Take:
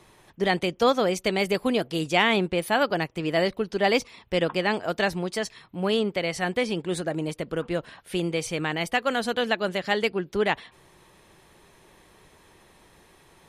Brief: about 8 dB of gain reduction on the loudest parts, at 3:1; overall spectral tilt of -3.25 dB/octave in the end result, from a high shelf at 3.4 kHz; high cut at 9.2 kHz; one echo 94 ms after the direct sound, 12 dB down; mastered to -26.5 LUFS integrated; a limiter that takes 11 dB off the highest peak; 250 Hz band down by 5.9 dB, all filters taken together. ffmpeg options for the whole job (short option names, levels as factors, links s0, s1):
-af "lowpass=9200,equalizer=f=250:t=o:g=-9,highshelf=f=3400:g=7,acompressor=threshold=0.0398:ratio=3,alimiter=level_in=1.12:limit=0.0631:level=0:latency=1,volume=0.891,aecho=1:1:94:0.251,volume=2.82"